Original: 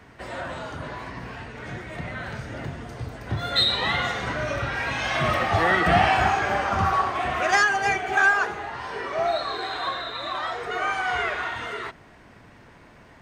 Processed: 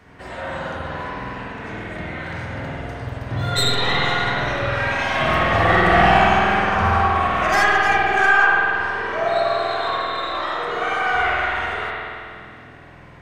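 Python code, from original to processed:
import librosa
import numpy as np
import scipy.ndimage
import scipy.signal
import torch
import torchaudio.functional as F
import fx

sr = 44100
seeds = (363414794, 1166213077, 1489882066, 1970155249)

y = fx.tracing_dist(x, sr, depth_ms=0.045)
y = fx.rev_spring(y, sr, rt60_s=2.4, pass_ms=(48,), chirp_ms=55, drr_db=-5.5)
y = F.gain(torch.from_numpy(y), -1.0).numpy()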